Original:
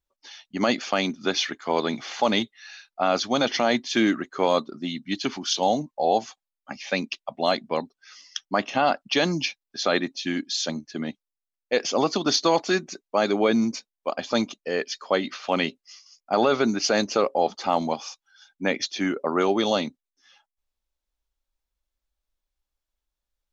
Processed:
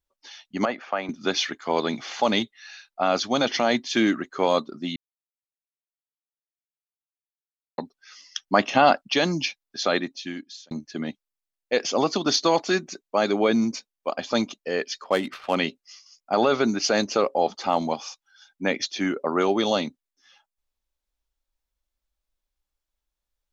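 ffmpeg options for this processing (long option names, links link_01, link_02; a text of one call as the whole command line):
ffmpeg -i in.wav -filter_complex "[0:a]asettb=1/sr,asplit=3[link_01][link_02][link_03];[link_01]atrim=end=0.654[link_04];[link_02]atrim=start=0.65:end=1.09,asetpts=PTS-STARTPTS,afade=type=in:duration=0.004:curve=qsin,afade=type=out:start_time=0.436:duration=0.004:curve=qsin,acrossover=split=510 2100:gain=0.251 1 0.0708[link_05][link_06][link_07];[link_05][link_06][link_07]amix=inputs=3:normalize=0[link_08];[link_03]atrim=start=1.086[link_09];[link_04][link_08]acrossfade=duration=0.004:curve1=hsin:curve2=qsin[link_10];[link_10][link_09]acrossfade=duration=0.004:curve1=qsin:curve2=hsin,asettb=1/sr,asplit=3[link_11][link_12][link_13];[link_11]atrim=end=15.044[link_14];[link_12]atrim=start=15.04:end=15.55,asetpts=PTS-STARTPTS,afade=type=in:duration=0.004:curve=qsin,afade=type=out:start_time=0.506:duration=0.004:curve=qsin,adynamicsmooth=sensitivity=6:basefreq=1800[link_15];[link_13]atrim=start=15.546[link_16];[link_14][link_15]acrossfade=duration=0.004:curve1=hsin:curve2=qsin[link_17];[link_17][link_16]acrossfade=duration=0.004:curve1=qsin:curve2=hsin,asplit=6[link_18][link_19][link_20][link_21][link_22][link_23];[link_18]atrim=end=4.96,asetpts=PTS-STARTPTS,afade=type=out:start_time=4.956:duration=0.004:curve=hsin[link_24];[link_19]atrim=start=4.96:end=7.78,asetpts=PTS-STARTPTS,volume=0[link_25];[link_20]atrim=start=7.78:end=8.482,asetpts=PTS-STARTPTS,afade=type=in:duration=0.004:curve=hsin[link_26];[link_21]atrim=start=8.478:end=9.012,asetpts=PTS-STARTPTS,volume=4.5dB[link_27];[link_22]atrim=start=9.008:end=10.71,asetpts=PTS-STARTPTS,afade=type=out:start_time=0.872:duration=0.83[link_28];[link_23]atrim=start=10.71,asetpts=PTS-STARTPTS,afade=type=in:duration=0.004:curve=hsin[link_29];[link_24][link_25][link_26]concat=n=3:v=0:a=1[link_30];[link_30][link_27]acrossfade=duration=0.004:curve1=hsin:curve2=hsin[link_31];[link_28][link_29]concat=n=2:v=0:a=1[link_32];[link_31][link_32]acrossfade=duration=0.004:curve1=hsin:curve2=hsin" out.wav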